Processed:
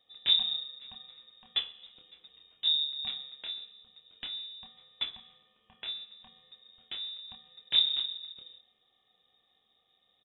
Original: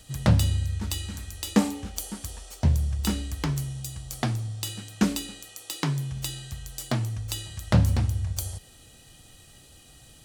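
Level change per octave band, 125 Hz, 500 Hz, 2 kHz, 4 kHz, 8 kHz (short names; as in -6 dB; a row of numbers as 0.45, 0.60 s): under -40 dB, under -25 dB, -10.0 dB, +8.5 dB, under -40 dB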